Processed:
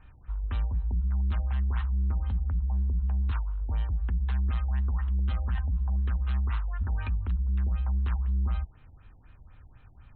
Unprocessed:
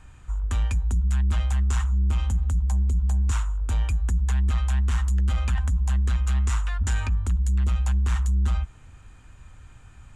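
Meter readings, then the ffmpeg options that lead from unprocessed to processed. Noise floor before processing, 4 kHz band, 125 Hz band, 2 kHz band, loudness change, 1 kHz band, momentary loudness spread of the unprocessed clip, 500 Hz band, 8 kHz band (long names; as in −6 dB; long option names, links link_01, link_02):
−48 dBFS, −11.0 dB, −5.0 dB, −8.0 dB, −5.0 dB, −6.0 dB, 3 LU, −5.0 dB, below −40 dB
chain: -af "afftfilt=real='re*lt(b*sr/1024,870*pow(4400/870,0.5+0.5*sin(2*PI*4*pts/sr)))':imag='im*lt(b*sr/1024,870*pow(4400/870,0.5+0.5*sin(2*PI*4*pts/sr)))':win_size=1024:overlap=0.75,volume=-5dB"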